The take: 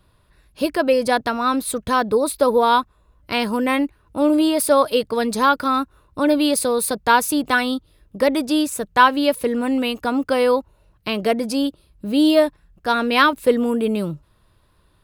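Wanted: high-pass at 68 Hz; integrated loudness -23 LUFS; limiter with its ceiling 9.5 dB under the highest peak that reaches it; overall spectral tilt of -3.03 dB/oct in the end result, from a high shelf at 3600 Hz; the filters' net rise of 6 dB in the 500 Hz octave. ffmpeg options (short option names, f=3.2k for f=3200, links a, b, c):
-af "highpass=68,equalizer=f=500:t=o:g=6.5,highshelf=f=3.6k:g=6.5,volume=-4.5dB,alimiter=limit=-13dB:level=0:latency=1"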